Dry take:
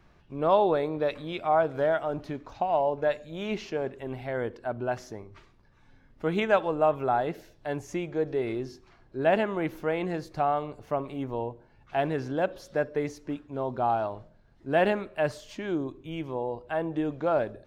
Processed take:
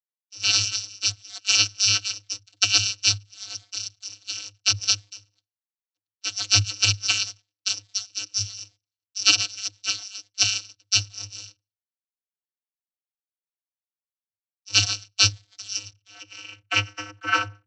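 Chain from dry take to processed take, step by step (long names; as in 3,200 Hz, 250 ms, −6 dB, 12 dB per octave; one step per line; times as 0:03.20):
samples in bit-reversed order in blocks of 256 samples
noise gate with hold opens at −47 dBFS
tilt shelving filter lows +7 dB, about 710 Hz
harmonic and percussive parts rebalanced percussive +8 dB
high-shelf EQ 5,700 Hz +7.5 dB
leveller curve on the samples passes 3
transient designer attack +8 dB, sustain −7 dB
band-pass filter sweep 4,200 Hz → 1,500 Hz, 0:15.61–0:17.33
soft clipping −13 dBFS, distortion −13 dB
channel vocoder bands 32, square 102 Hz
frozen spectrum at 0:11.82, 2.49 s
multiband upward and downward expander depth 70%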